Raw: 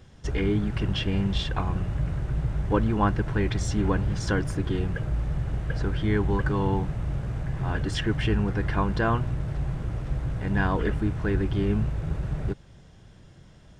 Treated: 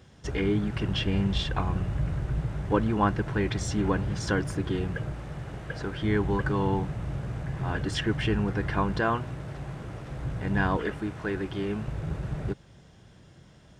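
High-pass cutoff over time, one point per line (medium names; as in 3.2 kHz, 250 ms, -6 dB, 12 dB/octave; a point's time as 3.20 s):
high-pass 6 dB/octave
100 Hz
from 0.93 s 41 Hz
from 2.41 s 110 Hz
from 5.12 s 270 Hz
from 6.02 s 100 Hz
from 9.00 s 250 Hz
from 10.19 s 89 Hz
from 10.77 s 350 Hz
from 11.88 s 92 Hz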